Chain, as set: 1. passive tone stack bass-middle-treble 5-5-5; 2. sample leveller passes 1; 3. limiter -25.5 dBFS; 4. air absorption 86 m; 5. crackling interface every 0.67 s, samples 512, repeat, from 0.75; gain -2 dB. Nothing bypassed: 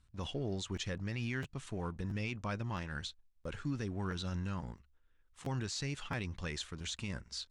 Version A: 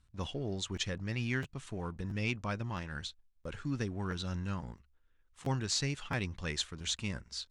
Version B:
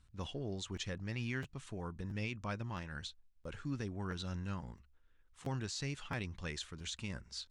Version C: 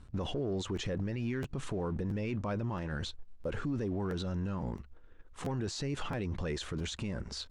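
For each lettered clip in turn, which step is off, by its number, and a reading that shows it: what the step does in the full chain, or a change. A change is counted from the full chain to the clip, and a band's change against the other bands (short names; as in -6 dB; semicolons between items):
3, crest factor change +4.5 dB; 2, crest factor change +2.5 dB; 1, 500 Hz band +5.5 dB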